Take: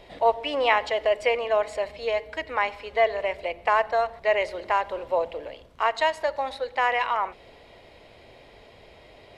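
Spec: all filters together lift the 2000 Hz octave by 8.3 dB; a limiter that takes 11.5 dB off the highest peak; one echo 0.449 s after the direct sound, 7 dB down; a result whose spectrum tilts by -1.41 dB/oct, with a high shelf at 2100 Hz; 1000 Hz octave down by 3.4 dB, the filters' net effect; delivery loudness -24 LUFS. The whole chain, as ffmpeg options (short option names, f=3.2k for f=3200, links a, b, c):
-af "equalizer=f=1k:t=o:g=-7.5,equalizer=f=2k:t=o:g=7,highshelf=f=2.1k:g=8,alimiter=limit=-13dB:level=0:latency=1,aecho=1:1:449:0.447,volume=1dB"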